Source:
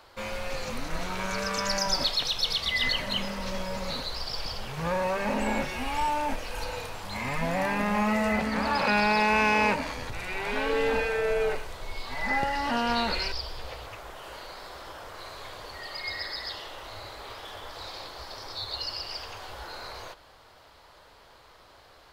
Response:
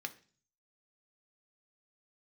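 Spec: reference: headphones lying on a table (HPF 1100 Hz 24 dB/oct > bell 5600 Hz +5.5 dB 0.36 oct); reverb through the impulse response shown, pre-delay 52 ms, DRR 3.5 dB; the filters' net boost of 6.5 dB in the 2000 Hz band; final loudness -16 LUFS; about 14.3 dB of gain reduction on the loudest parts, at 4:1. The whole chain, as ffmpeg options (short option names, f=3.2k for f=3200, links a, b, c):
-filter_complex "[0:a]equalizer=f=2k:t=o:g=8,acompressor=threshold=-34dB:ratio=4,asplit=2[a][b];[1:a]atrim=start_sample=2205,adelay=52[c];[b][c]afir=irnorm=-1:irlink=0,volume=-3.5dB[d];[a][d]amix=inputs=2:normalize=0,highpass=f=1.1k:w=0.5412,highpass=f=1.1k:w=1.3066,equalizer=f=5.6k:t=o:w=0.36:g=5.5,volume=18.5dB"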